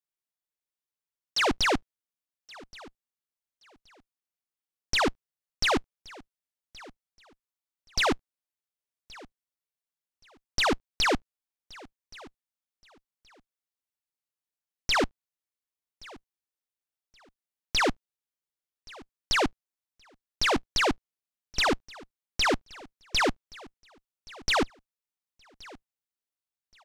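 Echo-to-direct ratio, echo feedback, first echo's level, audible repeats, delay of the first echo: -22.0 dB, 23%, -22.0 dB, 2, 1.124 s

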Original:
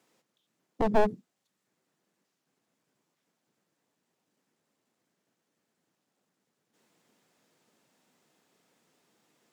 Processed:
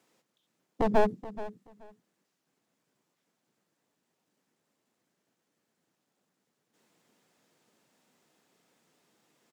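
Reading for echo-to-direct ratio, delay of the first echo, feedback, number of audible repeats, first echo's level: -15.5 dB, 0.428 s, 19%, 2, -15.5 dB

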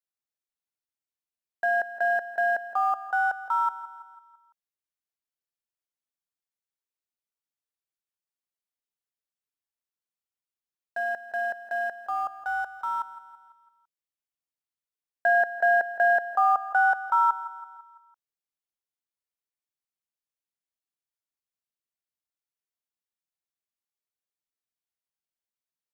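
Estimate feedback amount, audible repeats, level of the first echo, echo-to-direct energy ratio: 51%, 4, -15.0 dB, -13.5 dB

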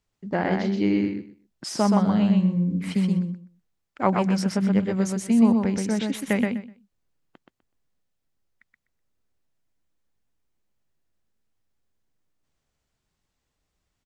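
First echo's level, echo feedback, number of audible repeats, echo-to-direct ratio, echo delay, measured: -3.5 dB, 18%, 3, -3.5 dB, 0.125 s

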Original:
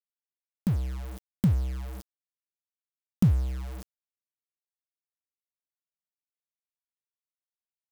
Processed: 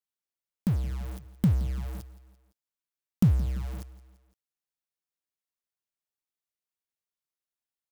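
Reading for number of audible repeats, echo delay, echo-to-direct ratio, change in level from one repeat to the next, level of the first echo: 3, 0.17 s, -16.0 dB, -5.0 dB, -17.5 dB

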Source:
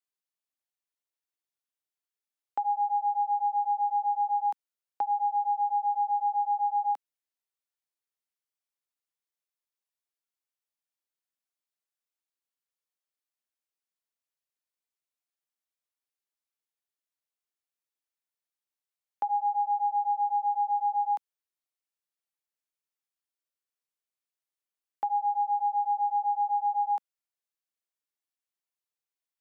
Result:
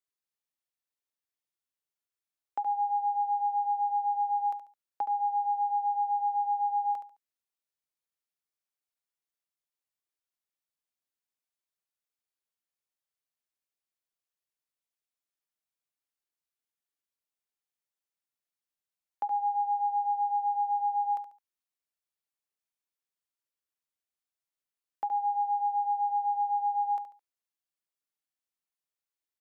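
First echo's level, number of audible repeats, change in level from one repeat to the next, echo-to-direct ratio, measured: -10.0 dB, 3, -10.5 dB, -9.5 dB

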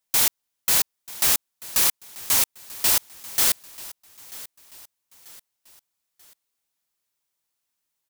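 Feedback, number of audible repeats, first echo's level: 42%, 3, -19.0 dB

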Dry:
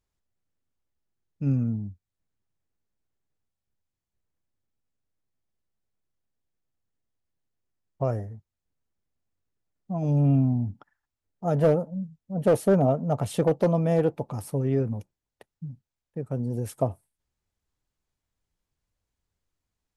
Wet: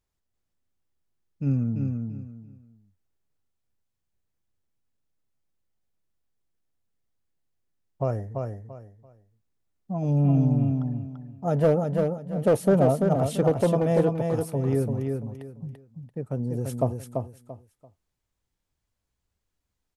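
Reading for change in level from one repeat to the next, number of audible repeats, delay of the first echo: -12.0 dB, 3, 0.339 s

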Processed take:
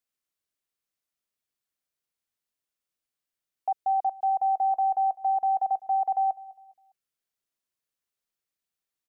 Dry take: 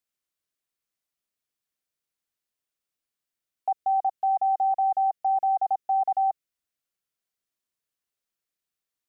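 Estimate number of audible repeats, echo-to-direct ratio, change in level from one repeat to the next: 2, -20.0 dB, -9.0 dB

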